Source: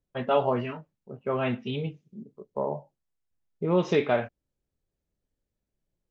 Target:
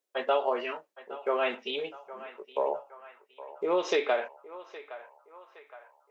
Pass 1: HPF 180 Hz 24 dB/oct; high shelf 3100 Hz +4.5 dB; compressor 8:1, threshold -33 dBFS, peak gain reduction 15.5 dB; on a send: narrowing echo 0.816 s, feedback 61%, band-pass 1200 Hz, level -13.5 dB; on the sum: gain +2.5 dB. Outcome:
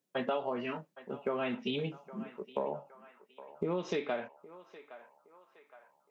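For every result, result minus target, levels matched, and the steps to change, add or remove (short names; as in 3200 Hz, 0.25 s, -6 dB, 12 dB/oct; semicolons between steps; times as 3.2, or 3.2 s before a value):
250 Hz band +8.5 dB; compressor: peak gain reduction +8 dB
change: HPF 390 Hz 24 dB/oct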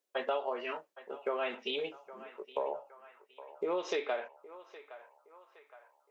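compressor: peak gain reduction +7.5 dB
change: compressor 8:1, threshold -24.5 dBFS, peak gain reduction 7.5 dB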